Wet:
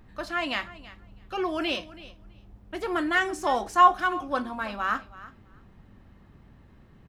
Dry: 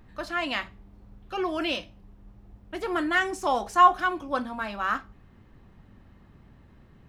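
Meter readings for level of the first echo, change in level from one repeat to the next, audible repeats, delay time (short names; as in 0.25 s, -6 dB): -18.0 dB, -16.5 dB, 2, 0.328 s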